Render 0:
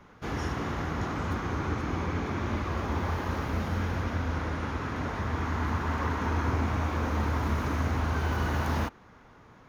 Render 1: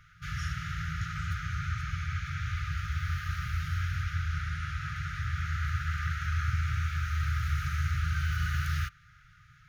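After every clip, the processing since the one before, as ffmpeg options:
-af "afftfilt=real='re*(1-between(b*sr/4096,170,1200))':imag='im*(1-between(b*sr/4096,170,1200))':win_size=4096:overlap=0.75"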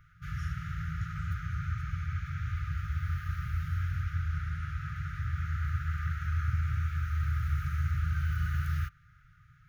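-af "equalizer=f=4.6k:w=0.4:g=-11.5"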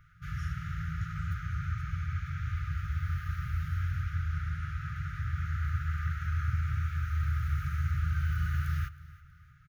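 -af "aecho=1:1:320|640|960:0.106|0.0403|0.0153"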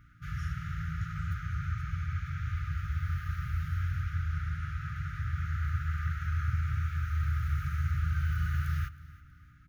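-af "aeval=exprs='val(0)+0.000794*(sin(2*PI*60*n/s)+sin(2*PI*2*60*n/s)/2+sin(2*PI*3*60*n/s)/3+sin(2*PI*4*60*n/s)/4+sin(2*PI*5*60*n/s)/5)':c=same"

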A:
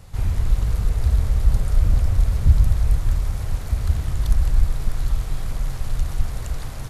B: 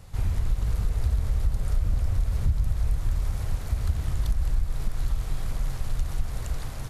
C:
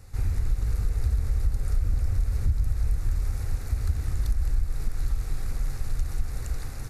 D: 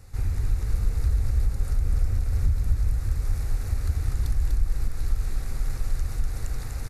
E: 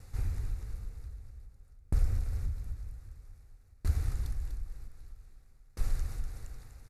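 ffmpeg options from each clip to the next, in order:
-af "acompressor=threshold=-16dB:ratio=6,volume=-3dB"
-af "equalizer=f=160:t=o:w=0.33:g=-11,equalizer=f=630:t=o:w=0.33:g=-8,equalizer=f=1k:t=o:w=0.33:g=-8,equalizer=f=3.15k:t=o:w=0.33:g=-12"
-af "aecho=1:1:246:0.631"
-af "aeval=exprs='val(0)*pow(10,-33*if(lt(mod(0.52*n/s,1),2*abs(0.52)/1000),1-mod(0.52*n/s,1)/(2*abs(0.52)/1000),(mod(0.52*n/s,1)-2*abs(0.52)/1000)/(1-2*abs(0.52)/1000))/20)':c=same,volume=-2.5dB"

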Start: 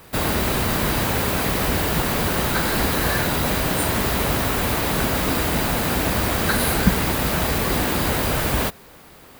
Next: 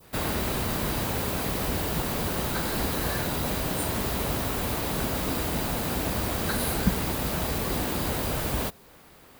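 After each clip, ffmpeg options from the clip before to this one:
-af "adynamicequalizer=threshold=0.01:dfrequency=1800:dqfactor=0.99:tfrequency=1800:tqfactor=0.99:attack=5:release=100:ratio=0.375:range=2:mode=cutabove:tftype=bell,volume=-6.5dB"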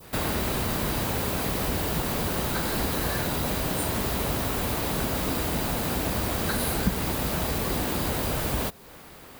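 -af "acompressor=threshold=-39dB:ratio=1.5,volume=6dB"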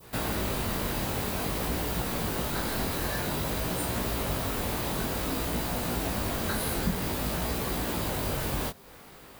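-af "flanger=delay=16.5:depth=6.5:speed=0.52"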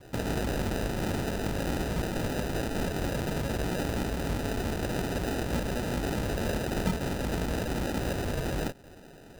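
-af "acrusher=samples=40:mix=1:aa=0.000001"

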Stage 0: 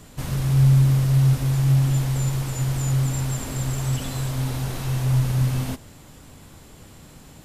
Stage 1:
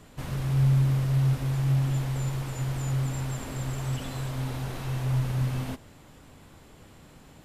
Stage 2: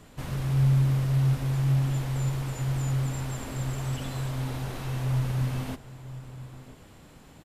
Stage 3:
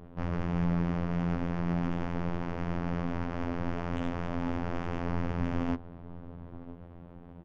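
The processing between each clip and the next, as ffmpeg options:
-af "bass=f=250:g=-3,treble=f=4k:g=-7,volume=-3.5dB"
-filter_complex "[0:a]asplit=2[a][b];[b]adelay=991.3,volume=-15dB,highshelf=f=4k:g=-22.3[c];[a][c]amix=inputs=2:normalize=0"
-af "aresample=8000,aresample=44100,afftfilt=real='hypot(re,im)*cos(PI*b)':imag='0':win_size=2048:overlap=0.75,adynamicsmooth=sensitivity=4:basefreq=750,volume=7dB"

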